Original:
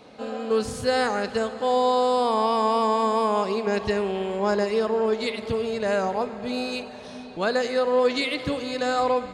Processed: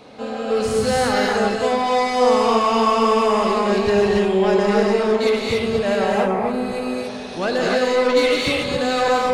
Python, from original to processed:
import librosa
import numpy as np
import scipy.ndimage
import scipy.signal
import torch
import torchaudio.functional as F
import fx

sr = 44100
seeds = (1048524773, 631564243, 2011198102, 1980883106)

y = fx.band_shelf(x, sr, hz=4200.0, db=-11.5, octaves=1.7, at=(5.95, 6.86))
y = 10.0 ** (-20.5 / 20.0) * np.tanh(y / 10.0 ** (-20.5 / 20.0))
y = fx.rev_gated(y, sr, seeds[0], gate_ms=310, shape='rising', drr_db=-3.0)
y = y * 10.0 ** (4.5 / 20.0)